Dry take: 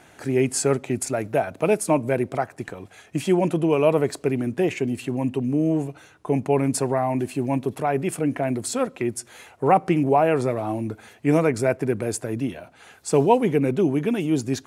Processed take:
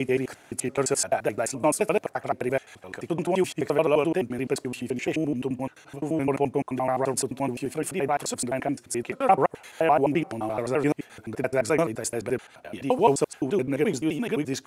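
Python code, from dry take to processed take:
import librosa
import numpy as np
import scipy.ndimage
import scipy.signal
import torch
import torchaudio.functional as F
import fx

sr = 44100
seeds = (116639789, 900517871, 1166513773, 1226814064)

y = fx.block_reorder(x, sr, ms=86.0, group=6)
y = fx.low_shelf(y, sr, hz=290.0, db=-9.0)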